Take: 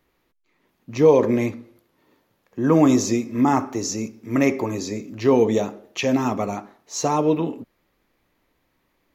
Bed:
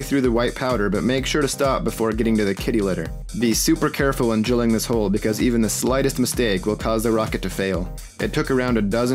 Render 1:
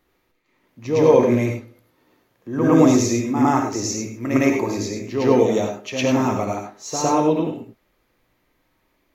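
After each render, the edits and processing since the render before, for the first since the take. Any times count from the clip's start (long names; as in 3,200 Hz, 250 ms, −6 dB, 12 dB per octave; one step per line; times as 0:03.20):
backwards echo 109 ms −6.5 dB
reverb whose tail is shaped and stops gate 120 ms rising, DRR 3.5 dB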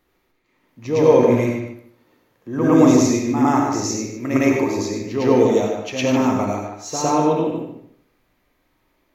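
feedback echo with a low-pass in the loop 149 ms, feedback 21%, low-pass 2,900 Hz, level −5.5 dB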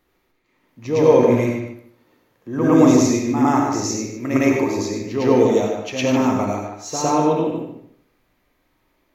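no processing that can be heard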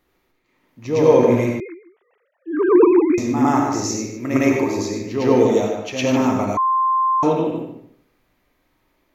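0:01.60–0:03.18: three sine waves on the formant tracks
0:06.57–0:07.23: beep over 1,050 Hz −14.5 dBFS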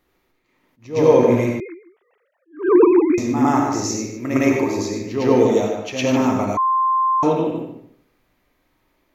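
level that may rise only so fast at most 210 dB per second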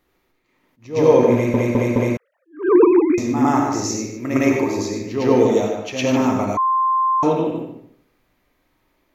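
0:01.33: stutter in place 0.21 s, 4 plays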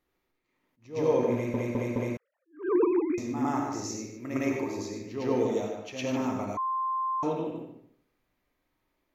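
level −12 dB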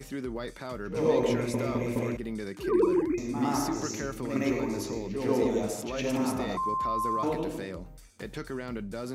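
mix in bed −16.5 dB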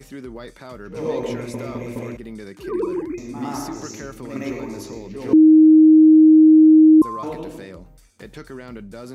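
0:05.33–0:07.02: beep over 313 Hz −6.5 dBFS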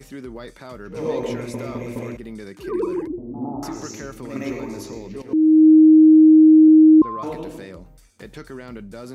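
0:03.07–0:03.63: Butterworth low-pass 820 Hz
0:05.22–0:05.68: fade in, from −14 dB
0:06.68–0:07.22: low-pass filter 3,500 Hz 24 dB per octave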